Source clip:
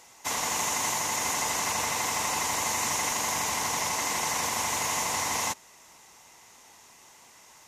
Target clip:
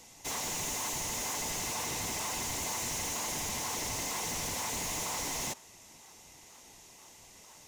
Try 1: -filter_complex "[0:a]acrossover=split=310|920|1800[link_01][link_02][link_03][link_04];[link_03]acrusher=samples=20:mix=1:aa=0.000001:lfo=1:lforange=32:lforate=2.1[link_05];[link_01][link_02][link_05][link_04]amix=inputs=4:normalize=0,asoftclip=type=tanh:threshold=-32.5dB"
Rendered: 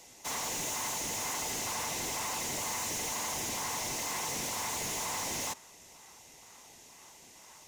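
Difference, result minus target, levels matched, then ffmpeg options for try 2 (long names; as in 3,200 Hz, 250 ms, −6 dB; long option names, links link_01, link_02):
sample-and-hold swept by an LFO: distortion −10 dB
-filter_complex "[0:a]acrossover=split=310|920|1800[link_01][link_02][link_03][link_04];[link_03]acrusher=samples=50:mix=1:aa=0.000001:lfo=1:lforange=80:lforate=2.1[link_05];[link_01][link_02][link_05][link_04]amix=inputs=4:normalize=0,asoftclip=type=tanh:threshold=-32.5dB"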